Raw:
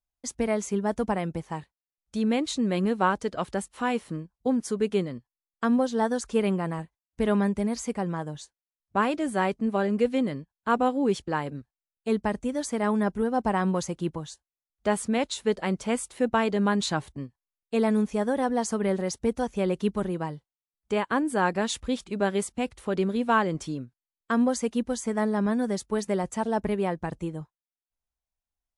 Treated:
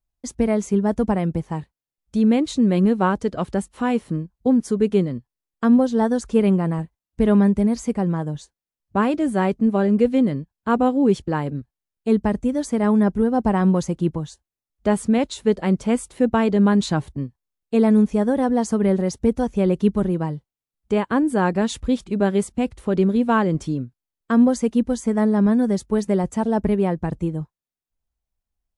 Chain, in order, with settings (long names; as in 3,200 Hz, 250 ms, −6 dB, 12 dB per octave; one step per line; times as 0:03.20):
low-shelf EQ 460 Hz +11 dB